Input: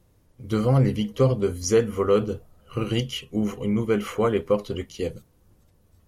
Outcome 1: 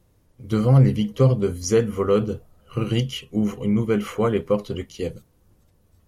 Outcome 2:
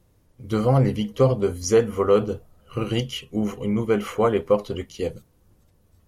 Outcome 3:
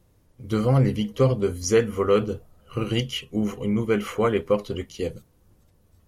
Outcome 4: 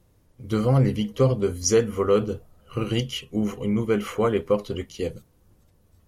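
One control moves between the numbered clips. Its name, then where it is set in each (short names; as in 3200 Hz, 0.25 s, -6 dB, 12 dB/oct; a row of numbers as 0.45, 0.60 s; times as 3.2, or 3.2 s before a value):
dynamic EQ, frequency: 150, 760, 2100, 5500 Hz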